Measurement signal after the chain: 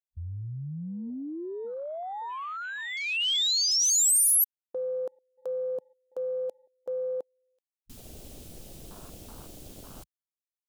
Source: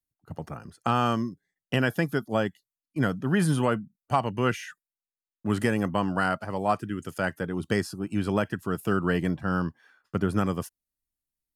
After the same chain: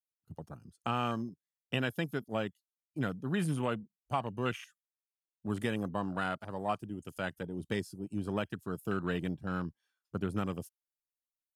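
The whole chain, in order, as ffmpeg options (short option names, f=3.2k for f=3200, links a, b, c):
-af "afwtdn=0.0178,aexciter=amount=5.1:drive=0.8:freq=2.7k,volume=-8.5dB"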